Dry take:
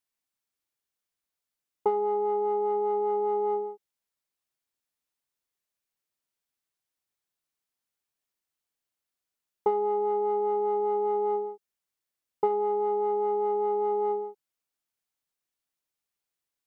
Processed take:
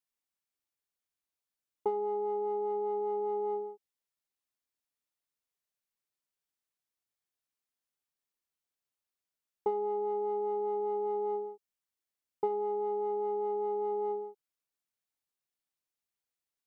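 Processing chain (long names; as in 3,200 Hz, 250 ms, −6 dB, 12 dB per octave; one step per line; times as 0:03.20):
dynamic equaliser 1,500 Hz, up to −7 dB, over −48 dBFS, Q 1.2
level −5 dB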